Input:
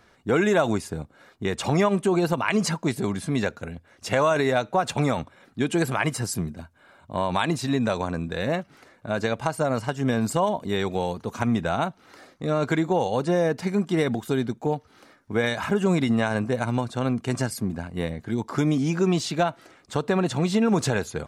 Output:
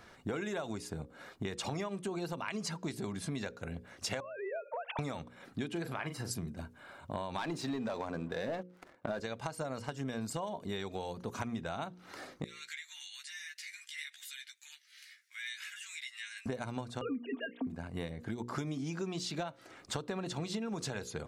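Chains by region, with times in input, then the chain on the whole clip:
0:04.20–0:04.99: three sine waves on the formant tracks + downward compressor 5 to 1, threshold −34 dBFS
0:05.68–0:06.31: parametric band 7,600 Hz −11 dB 1.3 octaves + double-tracking delay 41 ms −9.5 dB
0:07.38–0:09.20: high-pass filter 340 Hz 6 dB per octave + leveller curve on the samples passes 3 + high-shelf EQ 2,000 Hz −12 dB
0:12.44–0:16.46: elliptic high-pass filter 1,900 Hz, stop band 70 dB + downward compressor 2 to 1, threshold −52 dBFS + double-tracking delay 14 ms −3 dB
0:17.01–0:17.67: three sine waves on the formant tracks + comb filter 4.3 ms, depth 70%
whole clip: mains-hum notches 60/120/180/240/300/360/420/480/540 Hz; dynamic equaliser 4,700 Hz, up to +5 dB, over −44 dBFS, Q 0.97; downward compressor 8 to 1, threshold −37 dBFS; level +1.5 dB

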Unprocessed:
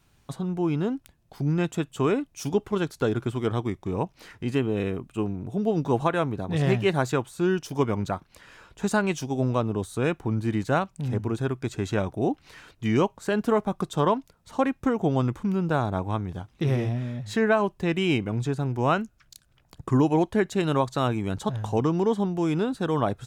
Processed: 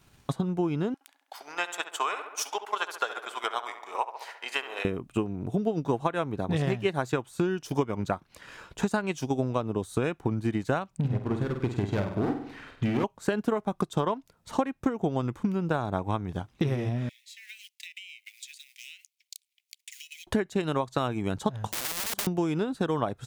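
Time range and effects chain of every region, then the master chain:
0:00.94–0:04.85: high-pass filter 730 Hz 24 dB per octave + feedback echo with a low-pass in the loop 68 ms, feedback 66%, low-pass 2,800 Hz, level −6 dB
0:10.97–0:13.04: bass and treble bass +3 dB, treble −12 dB + hard clipping −21.5 dBFS + flutter between parallel walls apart 8.4 metres, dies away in 0.59 s
0:17.09–0:20.27: mu-law and A-law mismatch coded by A + Butterworth high-pass 2,100 Hz 72 dB per octave + downward compressor 10 to 1, threshold −46 dBFS
0:21.67–0:22.27: tilt shelving filter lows +7.5 dB, about 720 Hz + wrap-around overflow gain 18.5 dB + every bin compressed towards the loudest bin 4 to 1
whole clip: transient designer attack +7 dB, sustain −4 dB; downward compressor 4 to 1, threshold −28 dBFS; low-shelf EQ 68 Hz −7 dB; level +3.5 dB

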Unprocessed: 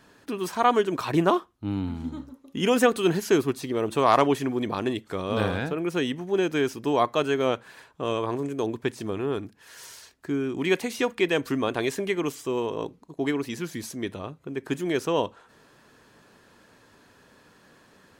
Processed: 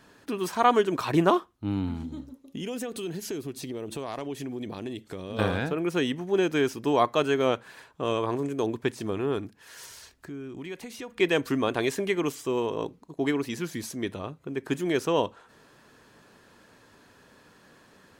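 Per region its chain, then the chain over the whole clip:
0:02.03–0:05.39: parametric band 1,200 Hz −8.5 dB 1.4 octaves + downward compressor 4 to 1, threshold −32 dBFS
0:09.85–0:11.20: low-shelf EQ 85 Hz +12 dB + downward compressor 2.5 to 1, threshold −42 dBFS + one half of a high-frequency compander encoder only
whole clip: no processing

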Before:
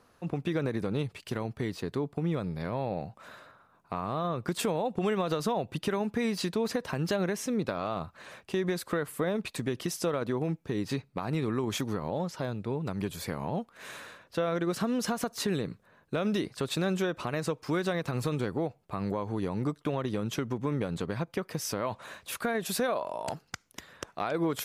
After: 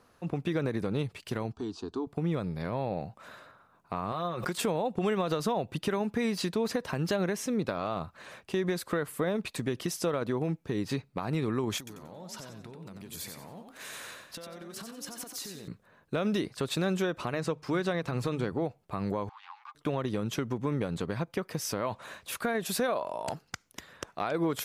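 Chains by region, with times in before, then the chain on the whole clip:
0:01.52–0:02.07: low-pass filter 7,300 Hz 24 dB per octave + phaser with its sweep stopped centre 540 Hz, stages 6
0:04.12–0:04.58: low-shelf EQ 450 Hz −9 dB + comb filter 5.5 ms, depth 49% + background raised ahead of every attack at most 44 dB per second
0:11.78–0:15.68: downward compressor 12 to 1, threshold −42 dBFS + high-shelf EQ 3,800 Hz +10 dB + echo with shifted repeats 91 ms, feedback 32%, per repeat +36 Hz, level −6 dB
0:17.32–0:18.65: high-shelf EQ 9,700 Hz −9.5 dB + mains-hum notches 50/100/150 Hz
0:19.29–0:19.75: phase distortion by the signal itself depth 0.18 ms + Chebyshev high-pass with heavy ripple 790 Hz, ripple 6 dB + high-frequency loss of the air 170 metres
whole clip: no processing

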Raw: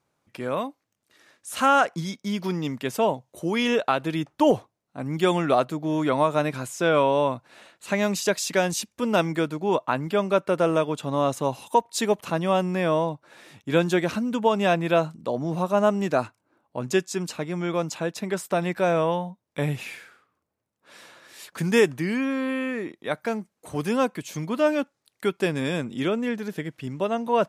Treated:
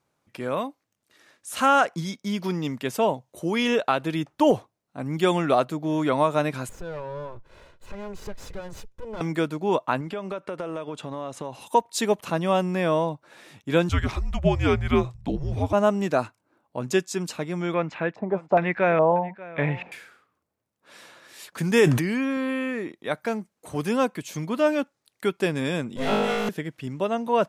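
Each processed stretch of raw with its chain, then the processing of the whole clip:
0:06.69–0:09.21: lower of the sound and its delayed copy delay 2 ms + spectral tilt −3 dB per octave + downward compressor 2 to 1, threshold −43 dBFS
0:10.01–0:11.61: low-pass filter 11,000 Hz 24 dB per octave + bass and treble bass −3 dB, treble −5 dB + downward compressor, threshold −28 dBFS
0:13.89–0:15.73: high-shelf EQ 9,700 Hz −11.5 dB + frequency shifter −280 Hz
0:17.74–0:19.92: auto-filter low-pass square 1.2 Hz 800–2,100 Hz + single-tap delay 587 ms −19 dB
0:21.52–0:22.37: high-pass filter 51 Hz + floating-point word with a short mantissa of 8 bits + level that may fall only so fast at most 48 dB per second
0:25.96–0:26.49: lower of the sound and its delayed copy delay 1.5 ms + flutter between parallel walls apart 3.3 metres, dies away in 1.3 s
whole clip: no processing

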